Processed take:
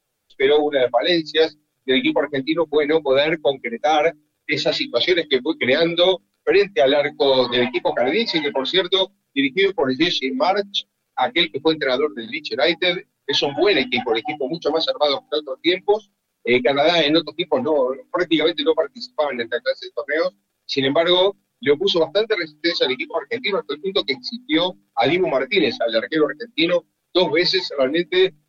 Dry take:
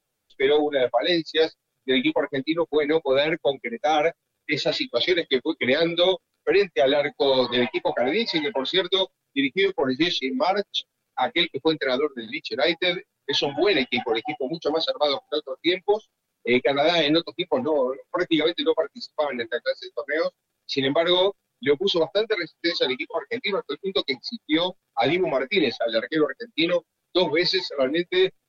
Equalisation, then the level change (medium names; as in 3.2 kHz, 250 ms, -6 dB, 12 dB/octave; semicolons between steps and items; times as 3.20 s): hum notches 50/100/150/200/250/300 Hz; +4.0 dB